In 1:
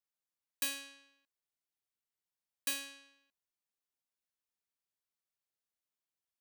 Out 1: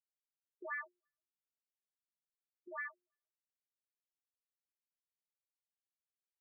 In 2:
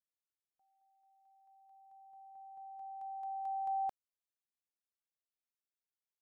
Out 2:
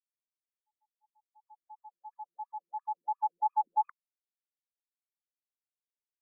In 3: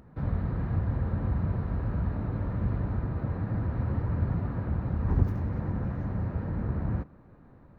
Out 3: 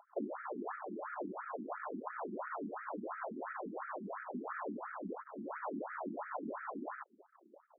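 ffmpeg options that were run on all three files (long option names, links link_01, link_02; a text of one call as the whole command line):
ffmpeg -i in.wav -filter_complex "[0:a]afreqshift=79,acompressor=threshold=-35dB:ratio=6,acrossover=split=460 2000:gain=0.0891 1 0.158[link_01][link_02][link_03];[link_01][link_02][link_03]amix=inputs=3:normalize=0,asoftclip=type=tanh:threshold=-35dB,anlmdn=0.000158,asubboost=boost=9:cutoff=110,afftfilt=real='re*between(b*sr/1024,260*pow(1800/260,0.5+0.5*sin(2*PI*2.9*pts/sr))/1.41,260*pow(1800/260,0.5+0.5*sin(2*PI*2.9*pts/sr))*1.41)':imag='im*between(b*sr/1024,260*pow(1800/260,0.5+0.5*sin(2*PI*2.9*pts/sr))/1.41,260*pow(1800/260,0.5+0.5*sin(2*PI*2.9*pts/sr))*1.41)':win_size=1024:overlap=0.75,volume=18dB" out.wav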